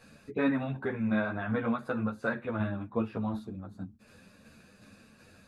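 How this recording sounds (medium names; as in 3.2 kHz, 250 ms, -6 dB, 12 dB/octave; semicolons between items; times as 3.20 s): tremolo saw down 2.7 Hz, depth 40%; a shimmering, thickened sound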